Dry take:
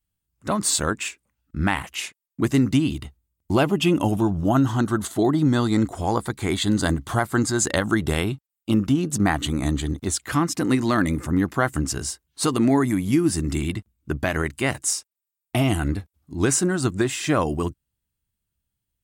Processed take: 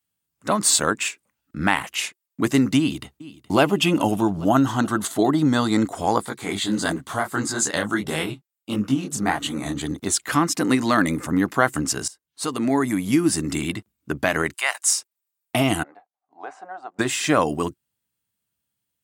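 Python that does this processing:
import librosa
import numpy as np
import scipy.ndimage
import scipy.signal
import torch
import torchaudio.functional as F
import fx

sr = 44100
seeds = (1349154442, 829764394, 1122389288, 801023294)

y = fx.echo_throw(x, sr, start_s=2.78, length_s=0.82, ms=420, feedback_pct=65, wet_db=-18.0)
y = fx.detune_double(y, sr, cents=54, at=(6.25, 9.81))
y = fx.highpass(y, sr, hz=750.0, slope=24, at=(14.52, 14.96), fade=0.02)
y = fx.ladder_bandpass(y, sr, hz=780.0, resonance_pct=80, at=(15.83, 16.99))
y = fx.edit(y, sr, fx.fade_in_from(start_s=12.08, length_s=1.04, floor_db=-19.0), tone=tone)
y = scipy.signal.sosfilt(scipy.signal.butter(2, 100.0, 'highpass', fs=sr, output='sos'), y)
y = fx.low_shelf(y, sr, hz=140.0, db=-12.0)
y = fx.notch(y, sr, hz=360.0, q=12.0)
y = y * 10.0 ** (4.0 / 20.0)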